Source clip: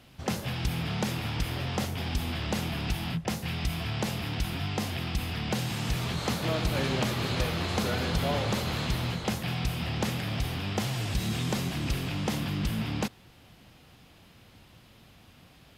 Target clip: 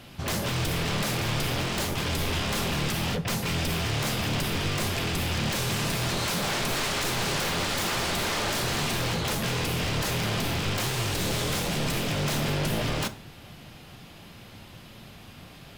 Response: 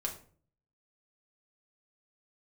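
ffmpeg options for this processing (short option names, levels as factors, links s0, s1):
-filter_complex "[0:a]aeval=exprs='0.0251*(abs(mod(val(0)/0.0251+3,4)-2)-1)':c=same,asplit=2[s0][s1];[1:a]atrim=start_sample=2205[s2];[s1][s2]afir=irnorm=-1:irlink=0,volume=0.562[s3];[s0][s3]amix=inputs=2:normalize=0,volume=1.78"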